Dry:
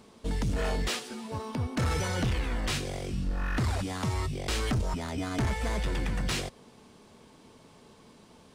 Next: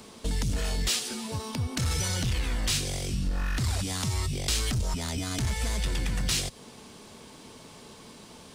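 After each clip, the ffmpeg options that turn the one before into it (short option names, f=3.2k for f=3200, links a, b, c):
-filter_complex "[0:a]acompressor=threshold=-30dB:ratio=6,highshelf=f=2.6k:g=7.5,acrossover=split=190|3000[a][b][c];[b]acompressor=threshold=-43dB:ratio=4[d];[a][d][c]amix=inputs=3:normalize=0,volume=5.5dB"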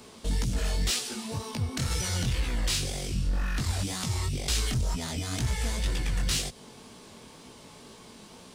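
-af "flanger=delay=16:depth=7.7:speed=2,volume=2dB"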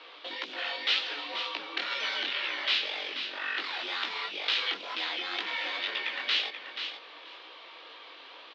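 -af "tiltshelf=f=730:g=-9.5,highpass=f=270:t=q:w=0.5412,highpass=f=270:t=q:w=1.307,lowpass=f=3.6k:t=q:w=0.5176,lowpass=f=3.6k:t=q:w=0.7071,lowpass=f=3.6k:t=q:w=1.932,afreqshift=69,aecho=1:1:483|966:0.376|0.0564"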